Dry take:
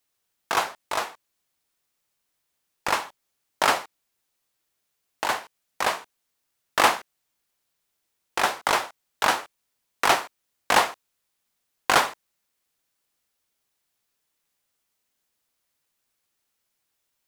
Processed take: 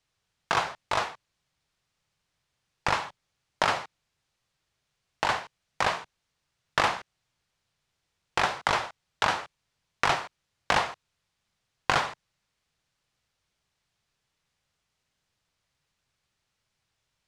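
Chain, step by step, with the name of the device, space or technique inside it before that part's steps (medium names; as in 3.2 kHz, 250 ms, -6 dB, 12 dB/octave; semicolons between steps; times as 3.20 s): jukebox (low-pass 5.7 kHz 12 dB/octave; resonant low shelf 190 Hz +8 dB, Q 1.5; compression 4:1, threshold -24 dBFS, peak gain reduction 10 dB); trim +2.5 dB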